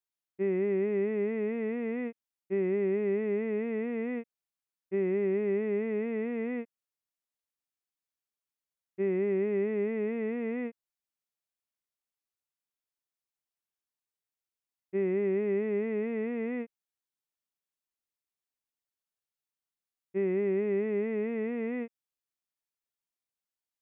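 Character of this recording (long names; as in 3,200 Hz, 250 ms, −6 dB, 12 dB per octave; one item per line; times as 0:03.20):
background noise floor −93 dBFS
spectral slope −5.0 dB per octave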